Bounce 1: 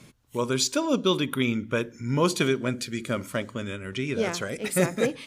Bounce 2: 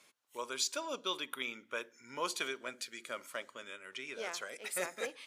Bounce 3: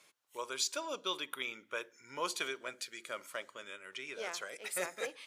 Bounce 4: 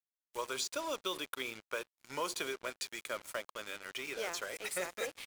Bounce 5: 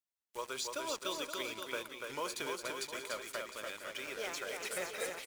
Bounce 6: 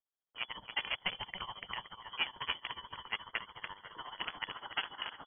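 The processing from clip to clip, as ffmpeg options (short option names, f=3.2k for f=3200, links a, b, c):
-af "highpass=670,volume=-8.5dB"
-af "equalizer=f=240:w=8:g=-10.5"
-filter_complex "[0:a]acrossover=split=770|7000[a][b][c];[a]acompressor=threshold=-42dB:ratio=4[d];[b]acompressor=threshold=-43dB:ratio=4[e];[c]acompressor=threshold=-49dB:ratio=4[f];[d][e][f]amix=inputs=3:normalize=0,asplit=2[g][h];[h]adelay=355.7,volume=-30dB,highshelf=f=4k:g=-8[i];[g][i]amix=inputs=2:normalize=0,acrusher=bits=7:mix=0:aa=0.5,volume=4.5dB"
-af "aecho=1:1:290|522|707.6|856.1|974.9:0.631|0.398|0.251|0.158|0.1,volume=-2.5dB"
-filter_complex "[0:a]acrossover=split=360|1800|2500[a][b][c][d];[b]acrusher=bits=5:mix=0:aa=0.000001[e];[a][e][c][d]amix=inputs=4:normalize=0,tremolo=f=14:d=0.83,lowpass=f=2.9k:t=q:w=0.5098,lowpass=f=2.9k:t=q:w=0.6013,lowpass=f=2.9k:t=q:w=0.9,lowpass=f=2.9k:t=q:w=2.563,afreqshift=-3400,volume=6.5dB"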